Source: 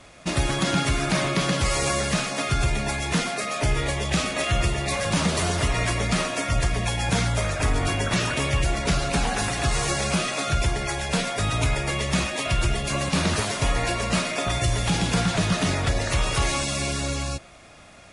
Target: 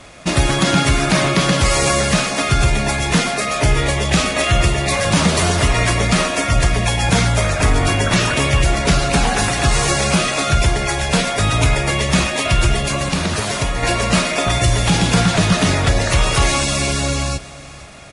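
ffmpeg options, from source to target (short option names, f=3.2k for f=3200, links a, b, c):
-filter_complex "[0:a]asettb=1/sr,asplit=3[a][b][c];[a]atrim=end=12.854[d];[b]atrim=start=12.85:end=13.83,asetpts=PTS-STARTPTS,afade=t=in:d=0.004:c=qsin,afade=t=out:st=0.976:d=0.004:c=qsin,acompressor=threshold=-24dB:ratio=6[e];[c]atrim=start=13.826[f];[d][e]acrossfade=d=0.004:c1=hsin:c2=qsin[g];[g][f]acrossfade=d=0.004:c1=qsin:c2=hsin,asplit=2[h][i];[i]aecho=0:1:482|964|1446:0.112|0.0438|0.0171[j];[h][j]amix=inputs=2:normalize=0,volume=8dB"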